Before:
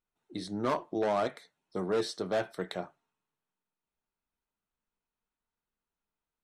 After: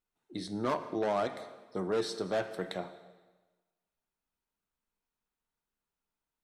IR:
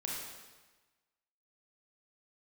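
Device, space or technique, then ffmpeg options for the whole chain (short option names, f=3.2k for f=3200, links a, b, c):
ducked reverb: -filter_complex "[0:a]asplit=3[a][b][c];[1:a]atrim=start_sample=2205[d];[b][d]afir=irnorm=-1:irlink=0[e];[c]apad=whole_len=283722[f];[e][f]sidechaincompress=threshold=-31dB:ratio=8:attack=12:release=161,volume=-9dB[g];[a][g]amix=inputs=2:normalize=0,volume=-2.5dB"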